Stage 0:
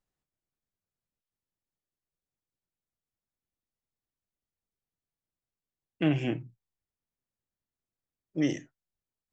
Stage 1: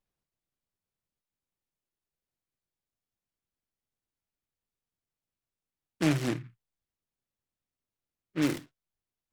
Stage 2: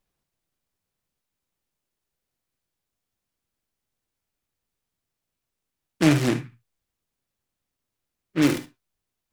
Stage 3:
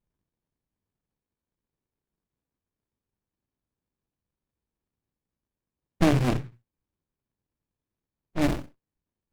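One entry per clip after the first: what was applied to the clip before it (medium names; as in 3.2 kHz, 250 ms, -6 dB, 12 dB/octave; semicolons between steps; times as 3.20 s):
delay time shaken by noise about 1.7 kHz, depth 0.13 ms
gated-style reverb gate 90 ms rising, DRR 11 dB; trim +7.5 dB
rattle on loud lows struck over -25 dBFS, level -16 dBFS; sliding maximum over 65 samples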